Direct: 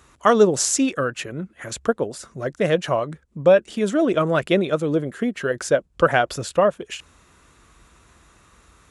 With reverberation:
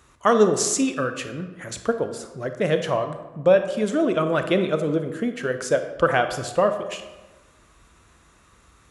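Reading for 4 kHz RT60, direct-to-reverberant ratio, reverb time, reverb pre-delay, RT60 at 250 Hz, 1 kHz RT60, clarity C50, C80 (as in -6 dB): 0.70 s, 7.5 dB, 1.2 s, 26 ms, 1.2 s, 1.2 s, 9.0 dB, 10.5 dB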